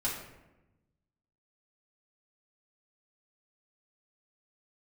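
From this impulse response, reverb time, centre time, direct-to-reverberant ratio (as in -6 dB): 1.0 s, 45 ms, -7.0 dB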